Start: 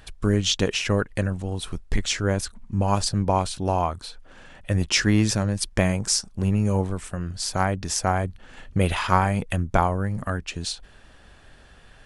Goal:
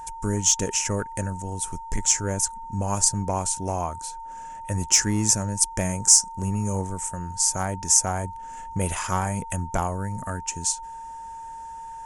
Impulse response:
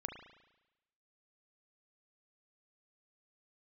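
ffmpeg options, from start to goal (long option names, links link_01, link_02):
-af "aeval=exprs='val(0)+0.0282*sin(2*PI*910*n/s)':channel_layout=same,acontrast=83,highshelf=frequency=5200:width_type=q:width=3:gain=10,volume=-11dB"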